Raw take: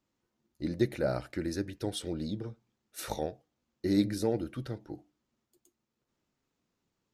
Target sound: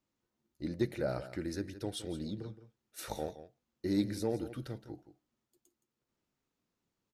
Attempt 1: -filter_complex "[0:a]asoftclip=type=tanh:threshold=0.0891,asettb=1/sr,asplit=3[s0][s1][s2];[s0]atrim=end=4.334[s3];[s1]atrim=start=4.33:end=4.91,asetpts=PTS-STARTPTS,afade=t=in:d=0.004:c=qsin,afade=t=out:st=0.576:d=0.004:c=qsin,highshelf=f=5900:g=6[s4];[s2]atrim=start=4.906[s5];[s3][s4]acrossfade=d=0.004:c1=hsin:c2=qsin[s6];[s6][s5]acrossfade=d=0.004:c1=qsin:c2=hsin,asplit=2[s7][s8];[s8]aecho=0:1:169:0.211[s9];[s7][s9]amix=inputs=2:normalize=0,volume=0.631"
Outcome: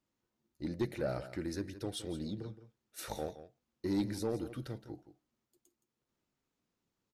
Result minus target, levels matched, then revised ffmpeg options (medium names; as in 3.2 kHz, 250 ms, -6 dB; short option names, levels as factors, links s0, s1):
saturation: distortion +17 dB
-filter_complex "[0:a]asoftclip=type=tanh:threshold=0.316,asettb=1/sr,asplit=3[s0][s1][s2];[s0]atrim=end=4.334[s3];[s1]atrim=start=4.33:end=4.91,asetpts=PTS-STARTPTS,afade=t=in:d=0.004:c=qsin,afade=t=out:st=0.576:d=0.004:c=qsin,highshelf=f=5900:g=6[s4];[s2]atrim=start=4.906[s5];[s3][s4]acrossfade=d=0.004:c1=hsin:c2=qsin[s6];[s6][s5]acrossfade=d=0.004:c1=qsin:c2=hsin,asplit=2[s7][s8];[s8]aecho=0:1:169:0.211[s9];[s7][s9]amix=inputs=2:normalize=0,volume=0.631"